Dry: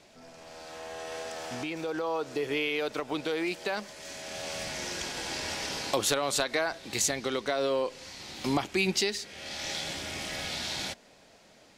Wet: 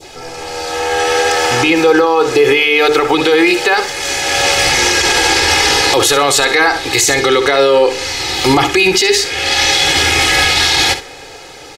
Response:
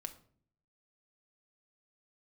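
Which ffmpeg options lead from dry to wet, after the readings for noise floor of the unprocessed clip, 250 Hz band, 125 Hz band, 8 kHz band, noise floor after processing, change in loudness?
-58 dBFS, +18.0 dB, +17.5 dB, +19.0 dB, -34 dBFS, +20.5 dB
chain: -filter_complex "[0:a]bandreject=f=50:t=h:w=6,bandreject=f=100:t=h:w=6,bandreject=f=150:t=h:w=6,bandreject=f=200:t=h:w=6,bandreject=f=250:t=h:w=6,bandreject=f=300:t=h:w=6,bandreject=f=350:t=h:w=6,bandreject=f=400:t=h:w=6,bandreject=f=450:t=h:w=6,adynamicequalizer=threshold=0.00501:dfrequency=1800:dqfactor=0.82:tfrequency=1800:tqfactor=0.82:attack=5:release=100:ratio=0.375:range=2:mode=boostabove:tftype=bell,aecho=1:1:2.4:0.89,asplit=2[s0][s1];[s1]aecho=0:1:64|128:0.224|0.0403[s2];[s0][s2]amix=inputs=2:normalize=0,alimiter=level_in=13.3:limit=0.891:release=50:level=0:latency=1,volume=0.891"

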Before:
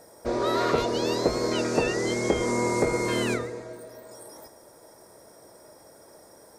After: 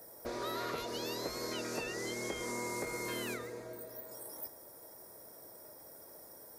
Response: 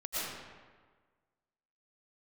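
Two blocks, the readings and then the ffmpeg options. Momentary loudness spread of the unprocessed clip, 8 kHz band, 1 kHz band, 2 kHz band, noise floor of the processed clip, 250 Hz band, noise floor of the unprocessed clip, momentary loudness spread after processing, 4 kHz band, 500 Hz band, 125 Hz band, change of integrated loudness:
20 LU, -7.5 dB, -12.5 dB, -9.5 dB, -54 dBFS, -15.0 dB, -53 dBFS, 13 LU, -9.0 dB, -14.5 dB, -16.0 dB, -13.5 dB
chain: -filter_complex "[0:a]acrossover=split=220|1200[s0][s1][s2];[s0]acompressor=threshold=0.00447:ratio=4[s3];[s1]acompressor=threshold=0.0178:ratio=4[s4];[s2]acompressor=threshold=0.0178:ratio=4[s5];[s3][s4][s5]amix=inputs=3:normalize=0,highshelf=f=11000:g=4.5,aexciter=amount=4.4:drive=5.5:freq=11000,volume=0.501"

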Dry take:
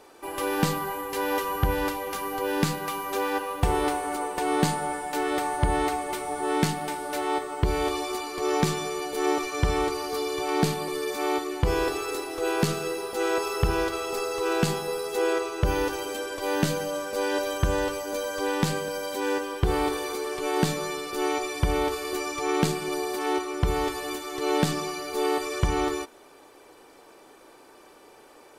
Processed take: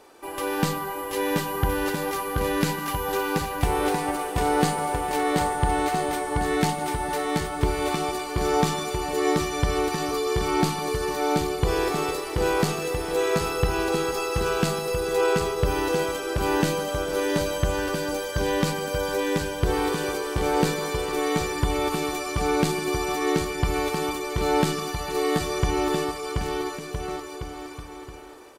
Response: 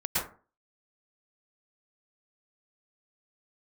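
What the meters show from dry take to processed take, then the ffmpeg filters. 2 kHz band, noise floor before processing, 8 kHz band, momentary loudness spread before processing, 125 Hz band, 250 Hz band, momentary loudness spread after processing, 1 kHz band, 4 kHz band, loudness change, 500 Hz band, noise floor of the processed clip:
+2.5 dB, -52 dBFS, +2.0 dB, 5 LU, +2.0 dB, +2.5 dB, 5 LU, +2.0 dB, +2.0 dB, +2.0 dB, +2.5 dB, -37 dBFS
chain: -af "aecho=1:1:730|1314|1781|2155|2454:0.631|0.398|0.251|0.158|0.1"

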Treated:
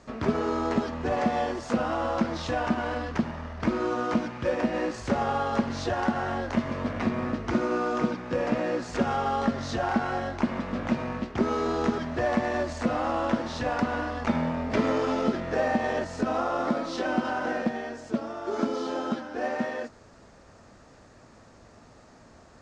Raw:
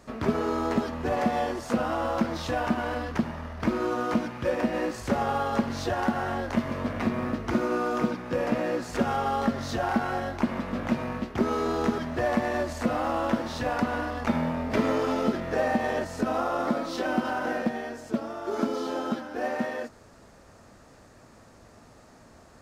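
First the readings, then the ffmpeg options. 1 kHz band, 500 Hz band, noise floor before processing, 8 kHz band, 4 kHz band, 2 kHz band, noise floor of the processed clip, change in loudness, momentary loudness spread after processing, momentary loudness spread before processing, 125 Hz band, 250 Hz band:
0.0 dB, 0.0 dB, -53 dBFS, -1.5 dB, 0.0 dB, 0.0 dB, -53 dBFS, 0.0 dB, 5 LU, 5 LU, 0.0 dB, 0.0 dB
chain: -af "lowpass=f=7700:w=0.5412,lowpass=f=7700:w=1.3066"

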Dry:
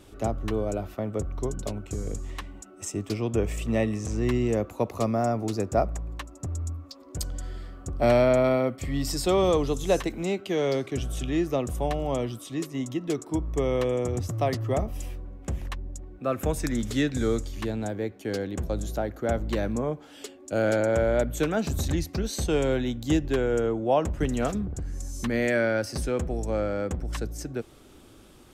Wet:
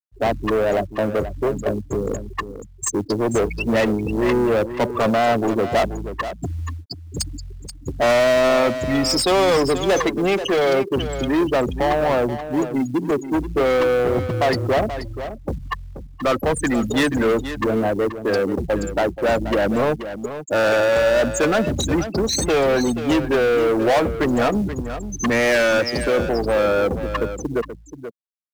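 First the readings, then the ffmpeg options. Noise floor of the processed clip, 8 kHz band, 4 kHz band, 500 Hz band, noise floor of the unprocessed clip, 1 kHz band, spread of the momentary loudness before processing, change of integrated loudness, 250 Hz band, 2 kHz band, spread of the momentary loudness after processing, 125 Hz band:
-40 dBFS, +8.0 dB, +11.0 dB, +8.0 dB, -50 dBFS, +10.0 dB, 12 LU, +7.5 dB, +6.5 dB, +11.5 dB, 12 LU, +2.0 dB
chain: -filter_complex "[0:a]afftfilt=real='re*gte(hypot(re,im),0.0447)':imag='im*gte(hypot(re,im),0.0447)':win_size=1024:overlap=0.75,asplit=2[s0][s1];[s1]highpass=f=720:p=1,volume=25.1,asoftclip=type=tanh:threshold=0.299[s2];[s0][s2]amix=inputs=2:normalize=0,lowpass=f=8000:p=1,volume=0.501,acrusher=bits=8:mode=log:mix=0:aa=0.000001,aecho=1:1:481:0.282"

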